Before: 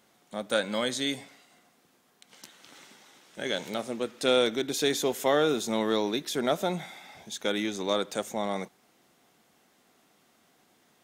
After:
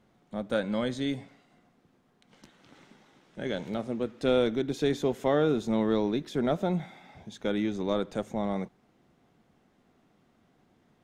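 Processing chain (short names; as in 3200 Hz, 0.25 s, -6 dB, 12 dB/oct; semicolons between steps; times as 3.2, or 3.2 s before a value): RIAA curve playback; gain -3.5 dB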